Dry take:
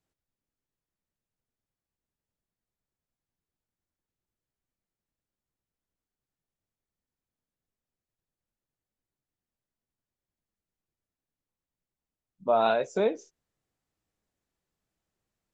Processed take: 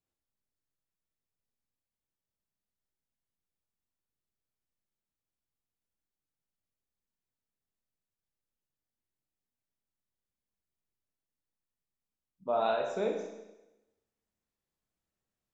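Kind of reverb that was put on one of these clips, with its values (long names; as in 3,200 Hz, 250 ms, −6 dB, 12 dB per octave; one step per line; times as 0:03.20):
four-comb reverb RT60 1 s, combs from 29 ms, DRR 2.5 dB
level −7.5 dB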